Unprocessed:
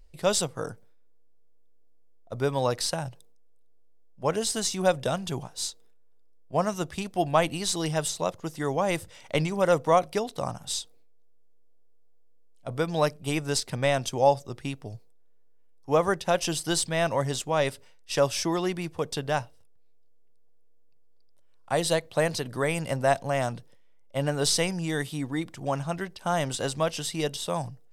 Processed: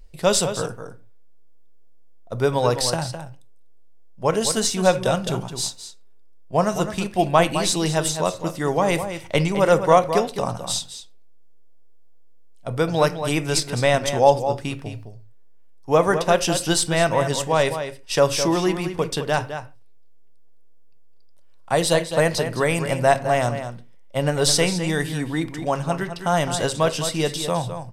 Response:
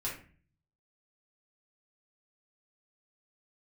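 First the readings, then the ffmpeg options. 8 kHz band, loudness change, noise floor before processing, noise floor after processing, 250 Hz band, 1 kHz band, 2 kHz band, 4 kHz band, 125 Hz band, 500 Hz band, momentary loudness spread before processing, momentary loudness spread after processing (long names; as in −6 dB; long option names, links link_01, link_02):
+6.0 dB, +6.5 dB, −52 dBFS, −42 dBFS, +6.5 dB, +6.5 dB, +6.5 dB, +6.0 dB, +6.5 dB, +6.5 dB, 9 LU, 11 LU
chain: -filter_complex "[0:a]asplit=2[link_01][link_02];[link_02]adelay=209.9,volume=-9dB,highshelf=frequency=4000:gain=-4.72[link_03];[link_01][link_03]amix=inputs=2:normalize=0,asplit=2[link_04][link_05];[1:a]atrim=start_sample=2205,afade=type=out:start_time=0.2:duration=0.01,atrim=end_sample=9261[link_06];[link_05][link_06]afir=irnorm=-1:irlink=0,volume=-12dB[link_07];[link_04][link_07]amix=inputs=2:normalize=0,volume=4.5dB"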